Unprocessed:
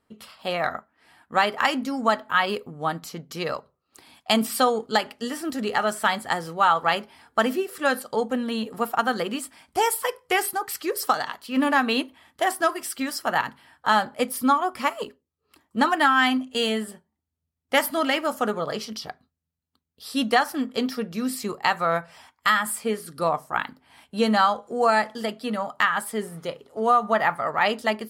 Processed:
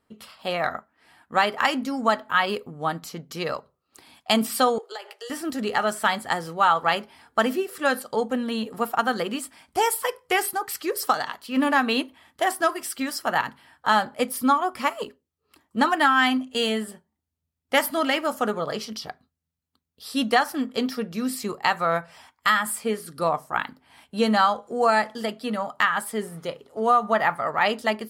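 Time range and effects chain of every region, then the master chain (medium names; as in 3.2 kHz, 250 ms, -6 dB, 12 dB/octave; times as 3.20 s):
4.78–5.30 s: steep high-pass 360 Hz 96 dB/octave + compression 4:1, threshold -35 dBFS + doubling 15 ms -11 dB
whole clip: none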